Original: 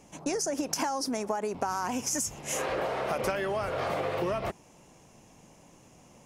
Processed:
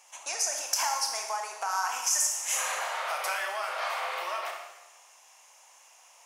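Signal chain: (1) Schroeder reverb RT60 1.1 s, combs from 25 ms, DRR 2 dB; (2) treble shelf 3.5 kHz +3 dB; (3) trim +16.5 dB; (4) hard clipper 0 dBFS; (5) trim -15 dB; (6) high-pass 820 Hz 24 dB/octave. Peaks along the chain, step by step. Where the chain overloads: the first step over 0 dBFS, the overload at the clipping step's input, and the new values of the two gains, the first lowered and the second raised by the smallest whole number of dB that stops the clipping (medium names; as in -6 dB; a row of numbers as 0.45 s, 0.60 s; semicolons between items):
-13.5 dBFS, -11.0 dBFS, +5.5 dBFS, 0.0 dBFS, -15.0 dBFS, -13.5 dBFS; step 3, 5.5 dB; step 3 +10.5 dB, step 5 -9 dB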